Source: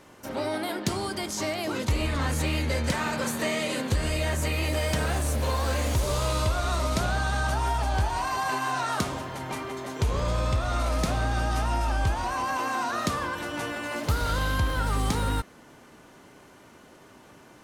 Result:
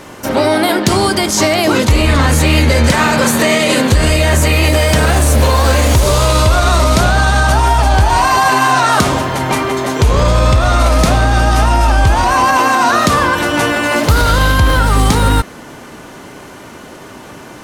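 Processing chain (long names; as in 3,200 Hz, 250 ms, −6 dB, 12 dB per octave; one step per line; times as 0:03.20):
boost into a limiter +19.5 dB
level −1 dB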